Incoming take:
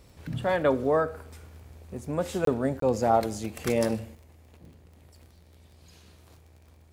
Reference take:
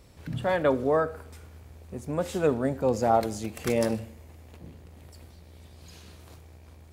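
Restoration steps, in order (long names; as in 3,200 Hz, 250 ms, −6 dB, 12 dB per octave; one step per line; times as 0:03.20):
click removal
repair the gap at 0:02.45/0:02.80, 23 ms
level 0 dB, from 0:04.15 +5.5 dB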